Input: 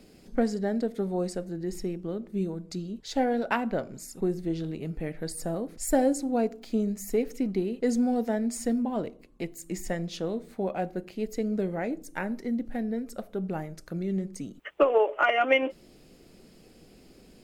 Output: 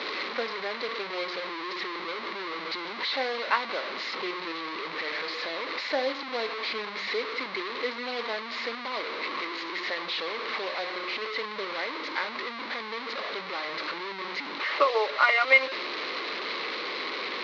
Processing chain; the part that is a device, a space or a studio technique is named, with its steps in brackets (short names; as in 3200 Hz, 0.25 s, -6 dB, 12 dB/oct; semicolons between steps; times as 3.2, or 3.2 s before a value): digital answering machine (BPF 370–3200 Hz; delta modulation 32 kbps, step -28 dBFS; speaker cabinet 440–4400 Hz, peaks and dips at 710 Hz -7 dB, 1100 Hz +9 dB, 2100 Hz +9 dB, 4100 Hz +10 dB)